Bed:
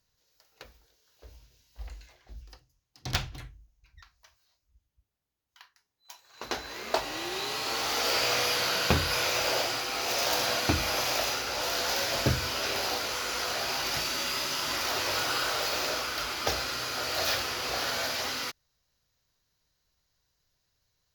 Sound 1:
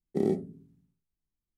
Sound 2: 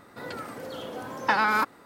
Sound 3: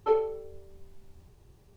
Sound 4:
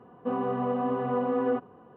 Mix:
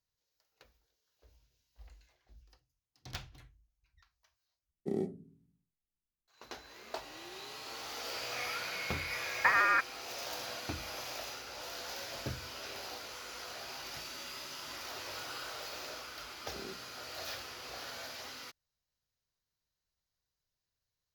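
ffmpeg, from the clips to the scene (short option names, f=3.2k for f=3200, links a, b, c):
-filter_complex "[1:a]asplit=2[a][b];[0:a]volume=-13.5dB[c];[2:a]lowpass=f=2.3k:t=q:w=0.5098,lowpass=f=2.3k:t=q:w=0.6013,lowpass=f=2.3k:t=q:w=0.9,lowpass=f=2.3k:t=q:w=2.563,afreqshift=-2700[d];[b]lowshelf=f=420:g=-12[e];[c]asplit=2[f][g];[f]atrim=end=4.714[h];[a]atrim=end=1.57,asetpts=PTS-STARTPTS,volume=-7.5dB[i];[g]atrim=start=6.276[j];[d]atrim=end=1.85,asetpts=PTS-STARTPTS,volume=-4dB,afade=t=in:d=0.004:c=hsin,afade=t=out:st=1.846:d=0.004:c=hsin,adelay=8160[k];[e]atrim=end=1.57,asetpts=PTS-STARTPTS,volume=-13.5dB,afade=t=in:d=0.004:c=hsin,afade=t=out:st=1.566:d=0.004:c=hsin,adelay=16390[l];[h][i]acrossfade=d=0.004:c1=hsin:c2=hsin[m];[m][j]acrossfade=d=0.004:c1=hsin:c2=hsin[n];[n][k][l]amix=inputs=3:normalize=0"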